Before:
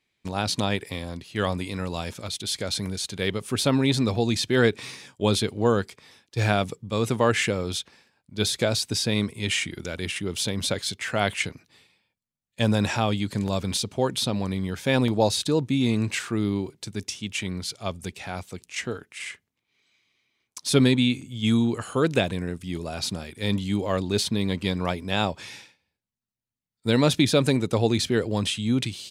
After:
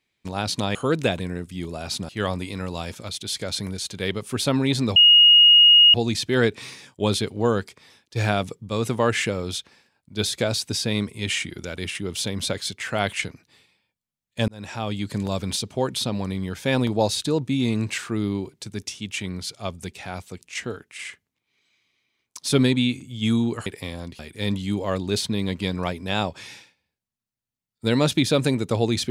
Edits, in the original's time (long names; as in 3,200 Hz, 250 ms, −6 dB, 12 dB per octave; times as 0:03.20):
0:00.75–0:01.28: swap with 0:21.87–0:23.21
0:04.15: insert tone 2,870 Hz −9 dBFS 0.98 s
0:12.69–0:13.30: fade in